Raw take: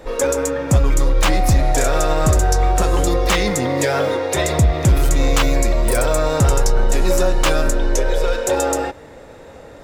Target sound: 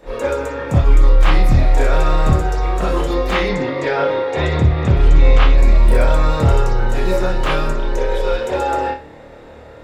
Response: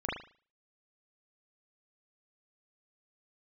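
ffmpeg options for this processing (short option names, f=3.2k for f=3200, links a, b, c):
-filter_complex "[0:a]asettb=1/sr,asplit=3[a][b][c];[a]atrim=end=3.494[d];[b]atrim=start=3.49:end=5.58,asetpts=PTS-STARTPTS,afade=t=in:d=0.004:c=qsin,afade=t=out:st=2.086:d=0.004:c=qsin,lowpass=4.2k[e];[c]atrim=start=5.576[f];[d][e]acrossfade=d=0.004:c1=hsin:c2=qsin[g];[g][f]acrossfade=d=0.004:c1=qsin:c2=hsin,acrossover=split=3200[h][i];[i]acompressor=threshold=-28dB:ratio=4:attack=1:release=60[j];[h][j]amix=inputs=2:normalize=0[k];[1:a]atrim=start_sample=2205,asetrate=61740,aresample=44100[l];[k][l]afir=irnorm=-1:irlink=0,volume=-3dB"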